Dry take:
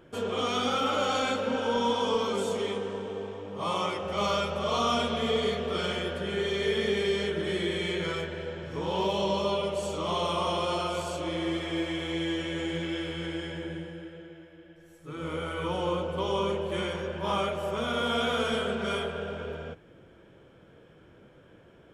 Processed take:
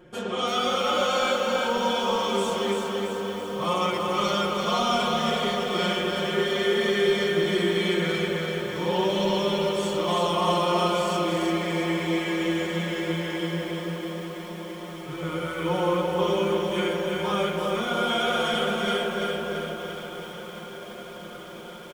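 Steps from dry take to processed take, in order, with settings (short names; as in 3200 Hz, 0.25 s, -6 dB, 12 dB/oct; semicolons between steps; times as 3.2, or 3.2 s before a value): comb 5.6 ms, depth 97%; on a send: diffused feedback echo 1.633 s, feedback 72%, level -15 dB; on the sum: lo-fi delay 0.336 s, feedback 55%, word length 8-bit, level -4 dB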